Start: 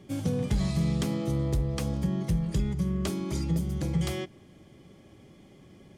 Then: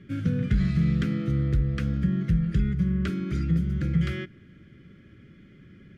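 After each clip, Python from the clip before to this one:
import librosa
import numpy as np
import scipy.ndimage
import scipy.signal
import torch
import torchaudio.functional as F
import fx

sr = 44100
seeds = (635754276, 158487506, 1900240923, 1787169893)

y = fx.curve_eq(x, sr, hz=(200.0, 500.0, 930.0, 1400.0, 8600.0), db=(0, -9, -27, 6, -21))
y = y * librosa.db_to_amplitude(4.0)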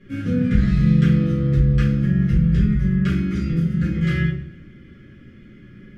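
y = fx.echo_feedback(x, sr, ms=108, feedback_pct=55, wet_db=-21.5)
y = fx.room_shoebox(y, sr, seeds[0], volume_m3=81.0, walls='mixed', distance_m=2.2)
y = y * librosa.db_to_amplitude(-4.0)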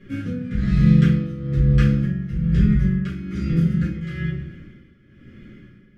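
y = x * (1.0 - 0.76 / 2.0 + 0.76 / 2.0 * np.cos(2.0 * np.pi * 1.1 * (np.arange(len(x)) / sr)))
y = y * librosa.db_to_amplitude(2.0)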